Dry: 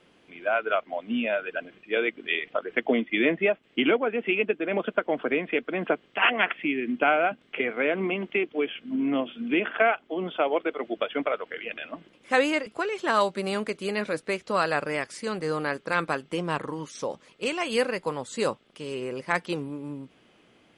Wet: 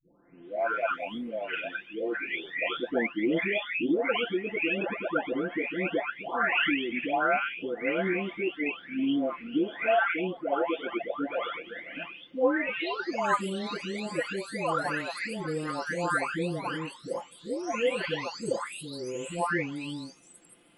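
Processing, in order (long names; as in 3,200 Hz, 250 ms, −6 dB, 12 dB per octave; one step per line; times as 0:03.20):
every frequency bin delayed by itself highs late, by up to 997 ms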